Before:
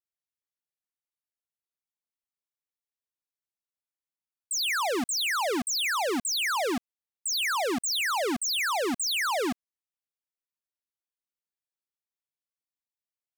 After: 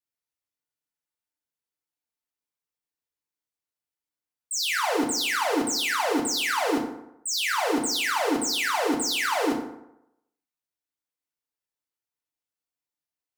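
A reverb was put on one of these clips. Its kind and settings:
feedback delay network reverb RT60 0.83 s, low-frequency decay 0.9×, high-frequency decay 0.55×, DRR −1.5 dB
level −1.5 dB

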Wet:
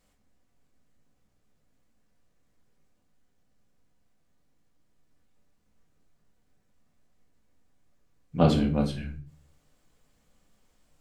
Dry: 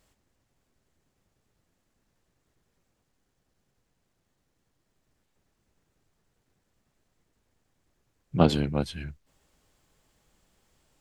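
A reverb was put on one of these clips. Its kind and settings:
rectangular room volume 320 cubic metres, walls furnished, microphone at 1.9 metres
level −4.5 dB

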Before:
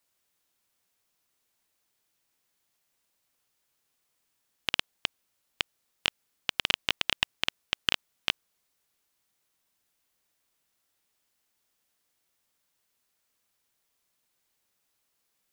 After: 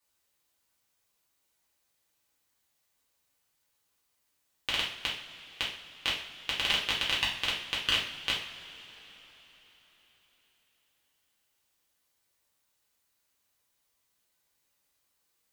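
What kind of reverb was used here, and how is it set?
coupled-rooms reverb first 0.47 s, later 4.4 s, from −20 dB, DRR −6 dB
level −6.5 dB

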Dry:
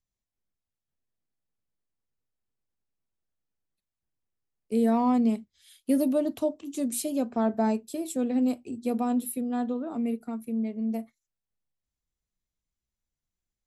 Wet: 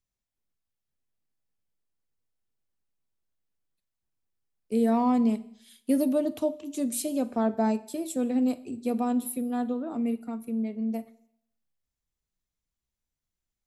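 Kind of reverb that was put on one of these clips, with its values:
four-comb reverb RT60 0.69 s, DRR 17 dB

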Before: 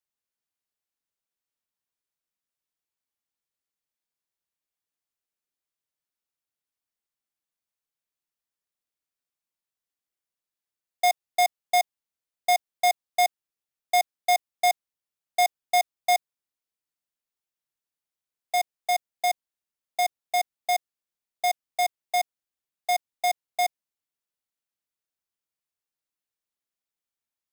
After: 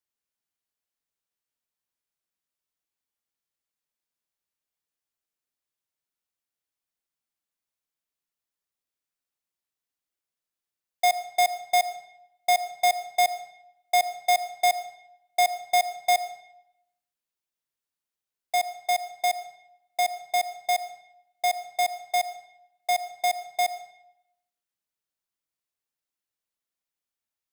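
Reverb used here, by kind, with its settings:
comb and all-pass reverb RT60 0.81 s, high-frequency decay 0.85×, pre-delay 40 ms, DRR 12.5 dB

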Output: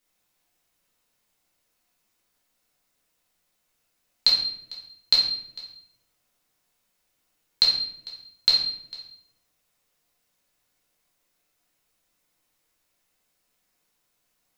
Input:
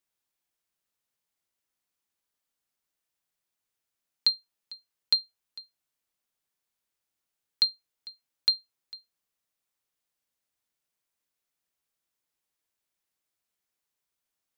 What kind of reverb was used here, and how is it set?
rectangular room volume 170 cubic metres, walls mixed, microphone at 2 metres
level +5.5 dB

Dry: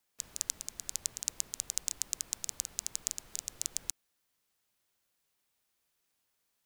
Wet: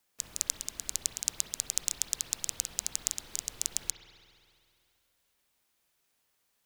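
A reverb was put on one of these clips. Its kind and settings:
spring reverb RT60 2.4 s, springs 48 ms, chirp 20 ms, DRR 5 dB
level +3.5 dB

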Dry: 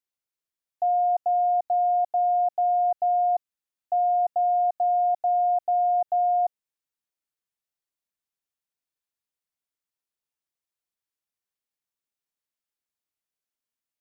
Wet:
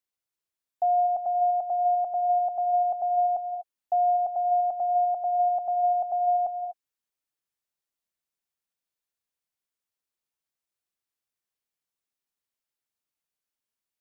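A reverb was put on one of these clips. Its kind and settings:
reverb whose tail is shaped and stops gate 270 ms rising, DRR 9.5 dB

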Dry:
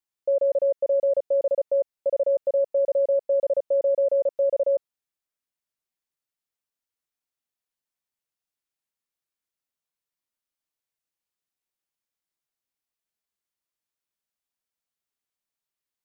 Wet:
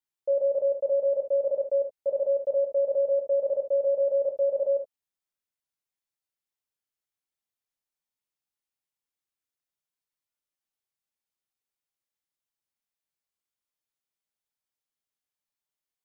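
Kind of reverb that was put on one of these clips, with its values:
reverb whose tail is shaped and stops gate 90 ms flat, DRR 3.5 dB
level −5 dB

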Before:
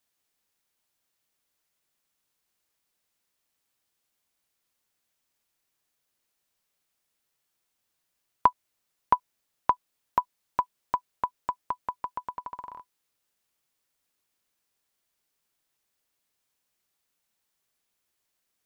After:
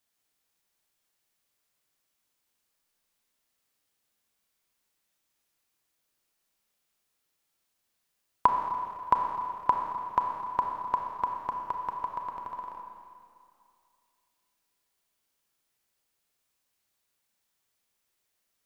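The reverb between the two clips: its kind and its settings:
four-comb reverb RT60 2.4 s, combs from 28 ms, DRR 2 dB
level −1.5 dB

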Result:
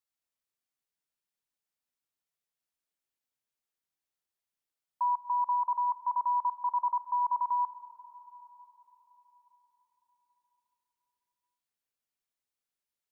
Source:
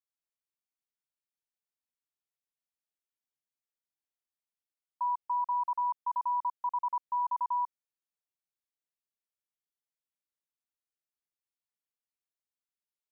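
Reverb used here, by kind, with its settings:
comb and all-pass reverb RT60 4.9 s, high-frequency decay 0.5×, pre-delay 35 ms, DRR 12.5 dB
level +2.5 dB

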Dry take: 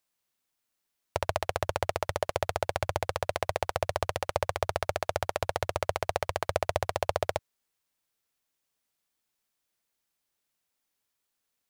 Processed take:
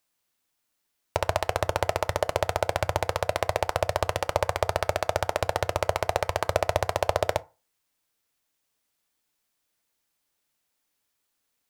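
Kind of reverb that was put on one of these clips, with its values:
feedback delay network reverb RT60 0.31 s, low-frequency decay 0.9×, high-frequency decay 0.55×, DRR 13.5 dB
level +4 dB

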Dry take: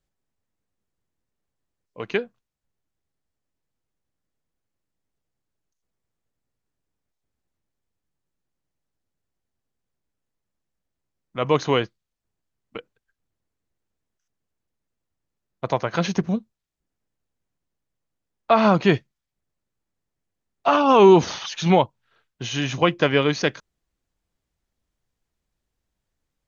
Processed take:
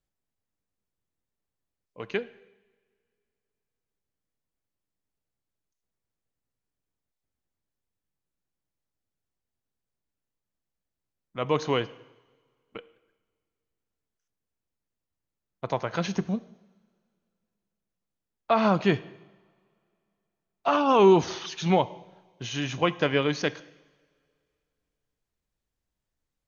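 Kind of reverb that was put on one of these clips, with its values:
coupled-rooms reverb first 0.96 s, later 2.7 s, from −20 dB, DRR 15.5 dB
level −5.5 dB

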